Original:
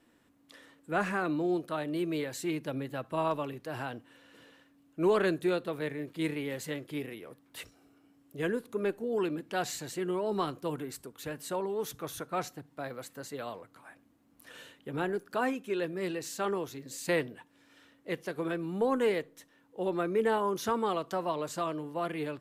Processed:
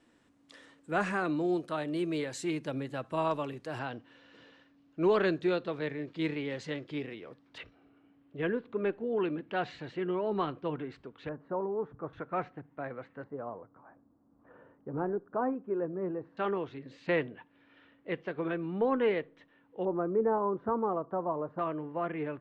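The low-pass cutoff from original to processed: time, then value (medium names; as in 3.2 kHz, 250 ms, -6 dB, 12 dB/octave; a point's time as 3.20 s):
low-pass 24 dB/octave
8.9 kHz
from 3.79 s 5.4 kHz
from 7.58 s 3.2 kHz
from 11.29 s 1.3 kHz
from 12.13 s 2.3 kHz
from 13.24 s 1.2 kHz
from 16.37 s 3.1 kHz
from 19.85 s 1.2 kHz
from 21.59 s 2.3 kHz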